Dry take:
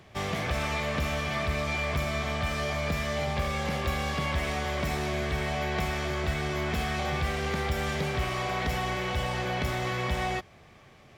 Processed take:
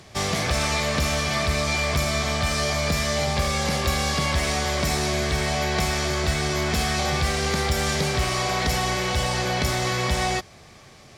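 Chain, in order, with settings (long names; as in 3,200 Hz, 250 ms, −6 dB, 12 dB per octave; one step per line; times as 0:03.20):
flat-topped bell 6,700 Hz +9.5 dB
level +5.5 dB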